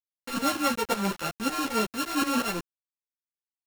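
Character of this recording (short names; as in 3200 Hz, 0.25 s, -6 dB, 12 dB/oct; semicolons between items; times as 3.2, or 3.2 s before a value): a buzz of ramps at a fixed pitch in blocks of 32 samples; tremolo saw up 5.4 Hz, depth 90%; a quantiser's noise floor 6-bit, dither none; a shimmering, thickened sound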